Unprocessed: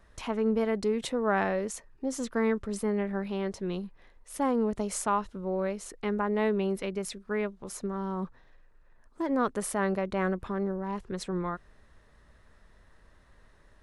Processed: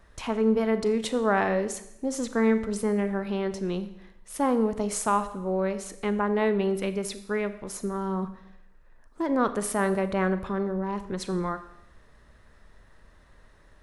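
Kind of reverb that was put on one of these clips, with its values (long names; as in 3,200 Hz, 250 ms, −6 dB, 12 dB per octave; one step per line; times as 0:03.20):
four-comb reverb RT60 0.8 s, combs from 28 ms, DRR 11 dB
level +3 dB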